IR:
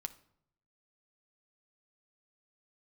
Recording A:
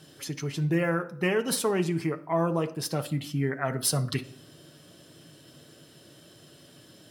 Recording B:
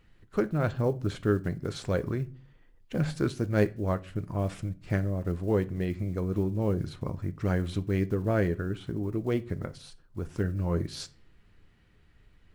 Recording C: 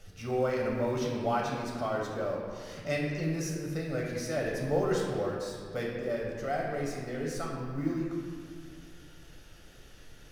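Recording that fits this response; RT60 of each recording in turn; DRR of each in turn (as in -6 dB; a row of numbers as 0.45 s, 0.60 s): A; 0.70 s, 0.40 s, 2.0 s; 7.0 dB, 11.5 dB, -2.5 dB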